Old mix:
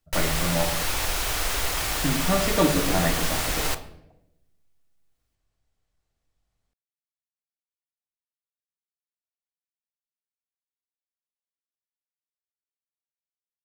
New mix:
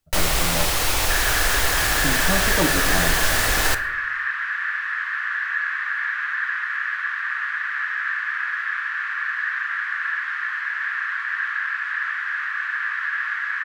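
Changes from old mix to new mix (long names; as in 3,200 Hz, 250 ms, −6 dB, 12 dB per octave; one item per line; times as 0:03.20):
speech: send −8.0 dB
first sound +5.5 dB
second sound: unmuted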